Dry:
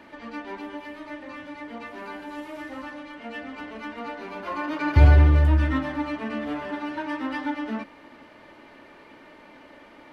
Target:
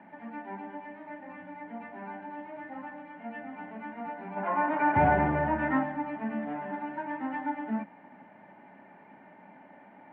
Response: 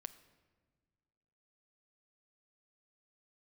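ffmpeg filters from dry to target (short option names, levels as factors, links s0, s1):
-filter_complex "[0:a]asplit=3[s0][s1][s2];[s0]afade=t=out:st=4.36:d=0.02[s3];[s1]asplit=2[s4][s5];[s5]highpass=f=720:p=1,volume=7.94,asoftclip=type=tanh:threshold=0.596[s6];[s4][s6]amix=inputs=2:normalize=0,lowpass=f=1200:p=1,volume=0.501,afade=t=in:st=4.36:d=0.02,afade=t=out:st=5.83:d=0.02[s7];[s2]afade=t=in:st=5.83:d=0.02[s8];[s3][s7][s8]amix=inputs=3:normalize=0,highpass=f=120:w=0.5412,highpass=f=120:w=1.3066,equalizer=f=190:t=q:w=4:g=10,equalizer=f=330:t=q:w=4:g=-7,equalizer=f=480:t=q:w=4:g=-8,equalizer=f=800:t=q:w=4:g=9,equalizer=f=1200:t=q:w=4:g=-10,lowpass=f=2000:w=0.5412,lowpass=f=2000:w=1.3066,volume=0.668"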